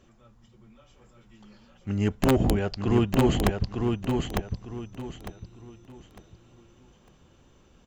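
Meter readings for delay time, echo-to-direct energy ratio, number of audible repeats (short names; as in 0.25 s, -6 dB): 0.903 s, -3.5 dB, 3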